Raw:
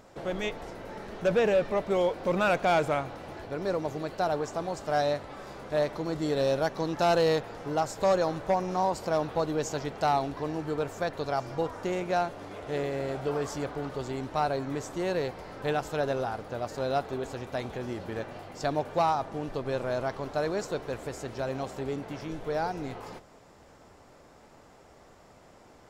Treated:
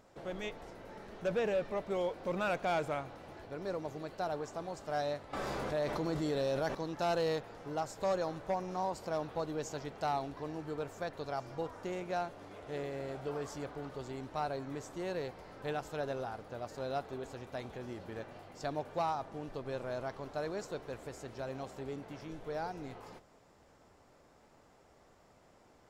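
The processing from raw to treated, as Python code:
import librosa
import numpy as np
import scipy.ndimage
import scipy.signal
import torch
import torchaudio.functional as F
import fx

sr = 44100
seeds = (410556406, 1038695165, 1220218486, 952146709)

y = fx.env_flatten(x, sr, amount_pct=70, at=(5.33, 6.75))
y = F.gain(torch.from_numpy(y), -8.5).numpy()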